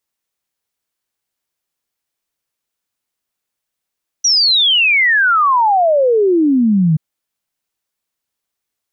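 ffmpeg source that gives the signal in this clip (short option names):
-f lavfi -i "aevalsrc='0.355*clip(min(t,2.73-t)/0.01,0,1)*sin(2*PI*5900*2.73/log(150/5900)*(exp(log(150/5900)*t/2.73)-1))':d=2.73:s=44100"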